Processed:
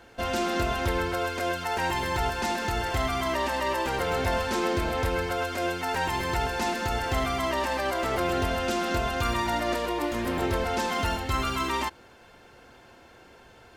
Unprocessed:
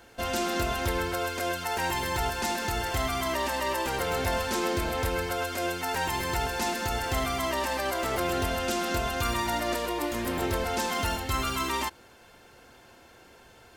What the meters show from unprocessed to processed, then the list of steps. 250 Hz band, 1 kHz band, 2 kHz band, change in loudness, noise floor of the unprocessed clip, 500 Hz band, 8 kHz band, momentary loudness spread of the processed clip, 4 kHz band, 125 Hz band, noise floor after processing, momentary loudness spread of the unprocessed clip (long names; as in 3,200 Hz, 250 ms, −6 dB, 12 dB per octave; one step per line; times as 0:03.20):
+2.0 dB, +2.0 dB, +1.0 dB, +1.0 dB, −54 dBFS, +2.0 dB, −4.0 dB, 2 LU, −0.5 dB, +2.0 dB, −53 dBFS, 2 LU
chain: high-shelf EQ 6,300 Hz −10 dB
level +2 dB